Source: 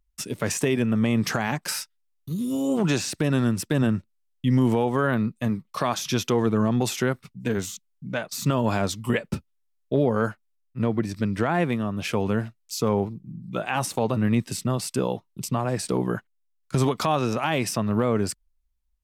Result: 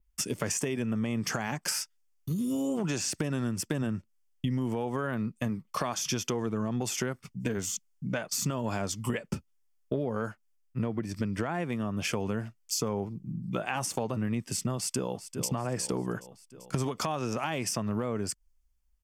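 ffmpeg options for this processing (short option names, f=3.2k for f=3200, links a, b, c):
-filter_complex "[0:a]asplit=2[a][b];[b]afade=t=in:st=14.75:d=0.01,afade=t=out:st=15.48:d=0.01,aecho=0:1:390|780|1170|1560|1950|2340:0.177828|0.106697|0.0640181|0.0384108|0.0230465|0.0138279[c];[a][c]amix=inputs=2:normalize=0,bandreject=f=3.9k:w=5.5,adynamicequalizer=threshold=0.00501:dfrequency=6600:dqfactor=1.3:tfrequency=6600:tqfactor=1.3:attack=5:release=100:ratio=0.375:range=3:mode=boostabove:tftype=bell,acompressor=threshold=-30dB:ratio=6,volume=2dB"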